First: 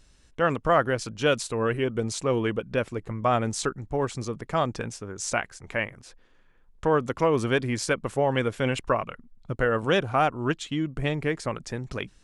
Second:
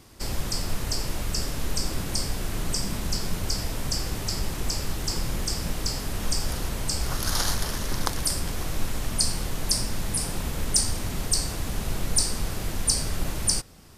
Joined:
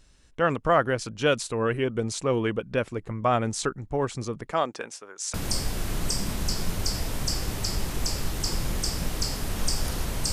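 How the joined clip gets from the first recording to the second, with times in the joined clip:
first
0:04.50–0:05.34: high-pass filter 230 Hz → 970 Hz
0:05.34: continue with second from 0:01.98

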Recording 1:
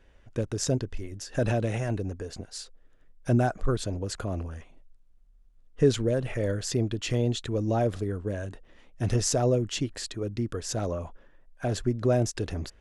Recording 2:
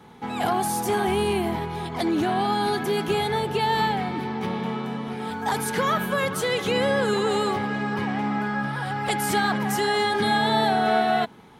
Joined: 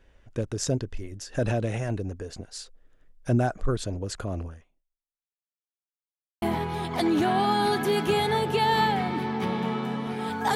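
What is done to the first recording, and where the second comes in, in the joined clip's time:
recording 1
0:04.47–0:05.78: fade out exponential
0:05.78–0:06.42: silence
0:06.42: continue with recording 2 from 0:01.43

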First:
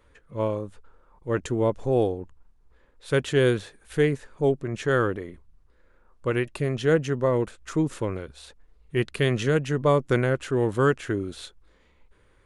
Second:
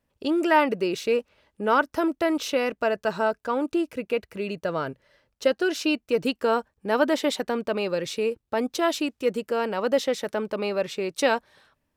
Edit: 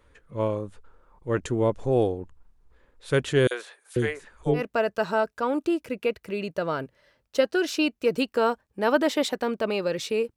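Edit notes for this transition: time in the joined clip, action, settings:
first
0:03.47–0:04.63: three-band delay without the direct sound highs, mids, lows 40/490 ms, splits 510/3,800 Hz
0:04.58: continue with second from 0:02.65, crossfade 0.10 s

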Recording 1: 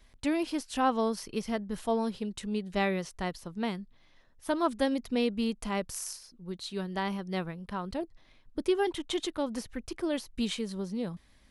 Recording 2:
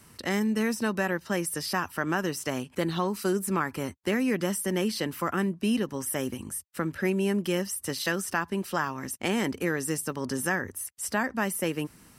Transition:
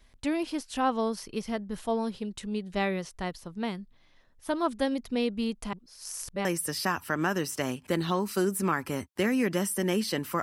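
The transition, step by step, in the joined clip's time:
recording 1
0:05.73–0:06.45: reverse
0:06.45: continue with recording 2 from 0:01.33

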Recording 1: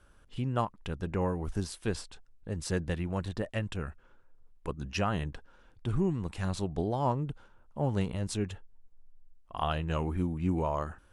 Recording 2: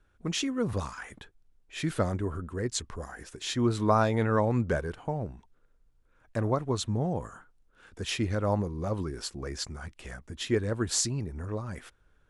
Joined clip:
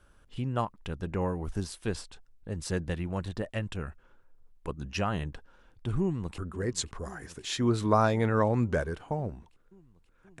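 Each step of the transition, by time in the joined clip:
recording 1
0:06.00–0:06.38: delay throw 530 ms, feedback 80%, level −16.5 dB
0:06.38: continue with recording 2 from 0:02.35

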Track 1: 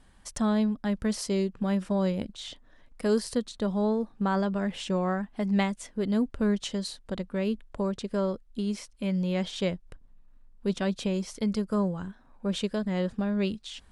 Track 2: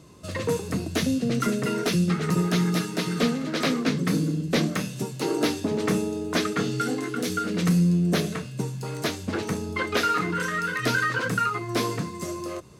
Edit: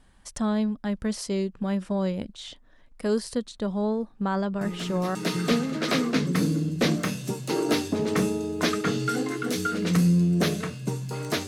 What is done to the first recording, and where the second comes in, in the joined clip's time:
track 1
0:04.61: mix in track 2 from 0:02.33 0.54 s −11 dB
0:05.15: continue with track 2 from 0:02.87

